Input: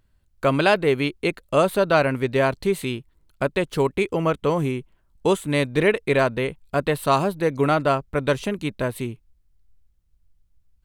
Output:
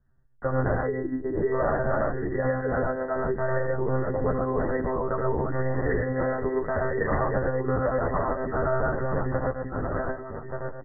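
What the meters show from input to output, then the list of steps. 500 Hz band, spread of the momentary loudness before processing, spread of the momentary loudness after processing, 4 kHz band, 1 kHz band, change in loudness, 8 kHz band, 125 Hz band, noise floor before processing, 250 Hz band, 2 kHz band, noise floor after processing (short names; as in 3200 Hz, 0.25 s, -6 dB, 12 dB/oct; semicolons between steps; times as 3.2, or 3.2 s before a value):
-4.0 dB, 8 LU, 5 LU, under -40 dB, -4.5 dB, -5.0 dB, under -40 dB, -2.0 dB, -65 dBFS, -5.0 dB, -6.5 dB, -39 dBFS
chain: regenerating reverse delay 0.589 s, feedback 57%, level 0 dB; reverb removal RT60 2 s; compressor 10:1, threshold -21 dBFS, peak gain reduction 11 dB; on a send: loudspeakers at several distances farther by 28 m -4 dB, 40 m -1 dB; on the sum: monotone LPC vocoder at 8 kHz 130 Hz; brick-wall FIR low-pass 2000 Hz; endless flanger 10.5 ms -0.57 Hz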